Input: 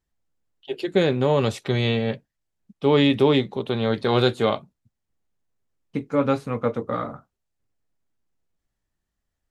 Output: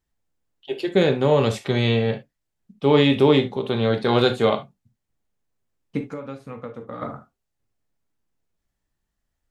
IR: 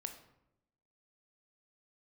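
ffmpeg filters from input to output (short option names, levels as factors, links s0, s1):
-filter_complex "[0:a]asettb=1/sr,asplit=3[s0][s1][s2];[s0]atrim=end=6.014[s3];[s1]atrim=start=6.01:end=7.02,asetpts=PTS-STARTPTS,afade=t=in:d=0.004:c=qsin,afade=t=out:st=1.006:d=0.004:c=qsin,acompressor=threshold=0.0251:ratio=10[s4];[s2]atrim=start=7.016[s5];[s3][s4]acrossfade=d=0.004:c1=hsin:c2=qsin[s6];[s6][s5]acrossfade=d=0.004:c1=qsin:c2=hsin[s7];[1:a]atrim=start_sample=2205,atrim=end_sample=3528[s8];[s7][s8]afir=irnorm=-1:irlink=0,volume=1.68"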